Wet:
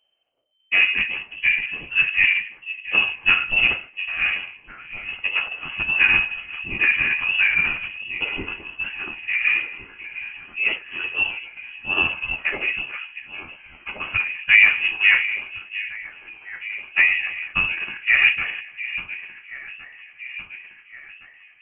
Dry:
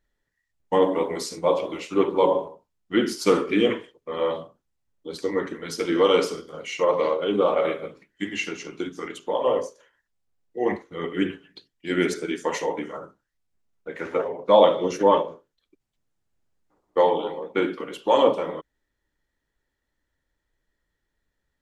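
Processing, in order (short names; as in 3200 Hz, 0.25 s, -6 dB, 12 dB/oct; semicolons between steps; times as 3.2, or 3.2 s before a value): echo with dull and thin repeats by turns 0.707 s, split 810 Hz, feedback 72%, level -12.5 dB; formant shift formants +5 st; inverted band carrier 3100 Hz; gain +2 dB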